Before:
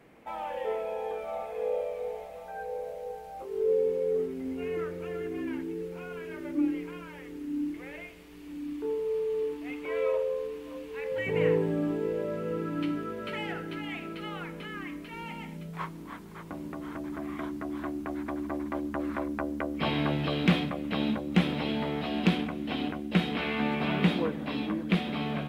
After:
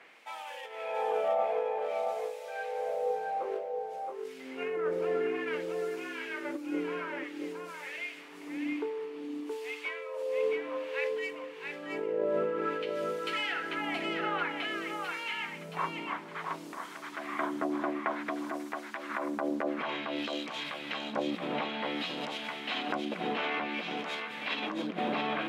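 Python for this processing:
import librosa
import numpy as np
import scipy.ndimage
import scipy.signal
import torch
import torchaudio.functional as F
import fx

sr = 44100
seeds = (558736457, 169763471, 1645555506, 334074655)

y = fx.tracing_dist(x, sr, depth_ms=0.071)
y = scipy.signal.sosfilt(scipy.signal.butter(2, 110.0, 'highpass', fs=sr, output='sos'), y)
y = fx.low_shelf(y, sr, hz=280.0, db=-6.0)
y = fx.over_compress(y, sr, threshold_db=-36.0, ratio=-1.0)
y = fx.filter_lfo_bandpass(y, sr, shape='sine', hz=0.55, low_hz=610.0, high_hz=6500.0, q=0.75)
y = y + 10.0 ** (-4.5 / 20.0) * np.pad(y, (int(673 * sr / 1000.0), 0))[:len(y)]
y = F.gain(torch.from_numpy(y), 7.0).numpy()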